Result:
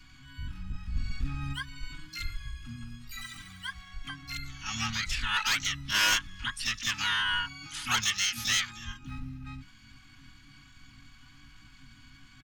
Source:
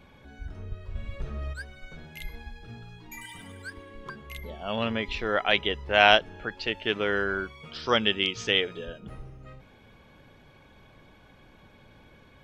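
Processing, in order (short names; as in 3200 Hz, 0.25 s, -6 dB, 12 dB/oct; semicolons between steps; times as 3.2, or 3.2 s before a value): Chebyshev band-stop 140–1200 Hz, order 5; high shelf 5500 Hz -7 dB; comb 6.2 ms, depth 69%; soft clip -23 dBFS, distortion -7 dB; harmoniser -7 st -8 dB, +4 st -11 dB, +12 st -1 dB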